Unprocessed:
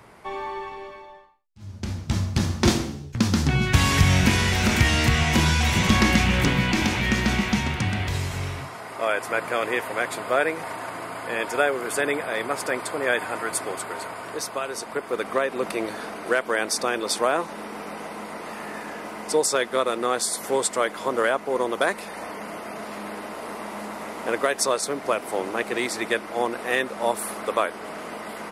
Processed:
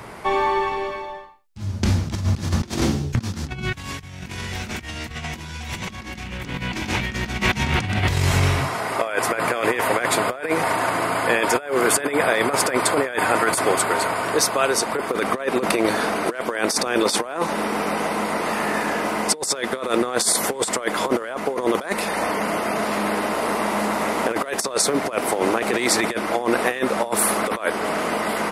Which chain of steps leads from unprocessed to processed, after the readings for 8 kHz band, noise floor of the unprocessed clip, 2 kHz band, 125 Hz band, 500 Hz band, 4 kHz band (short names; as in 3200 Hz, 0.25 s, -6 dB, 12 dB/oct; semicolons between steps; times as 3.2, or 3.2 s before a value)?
+5.0 dB, -39 dBFS, +2.0 dB, -1.0 dB, +3.5 dB, +1.0 dB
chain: negative-ratio compressor -28 dBFS, ratio -0.5; gain +7 dB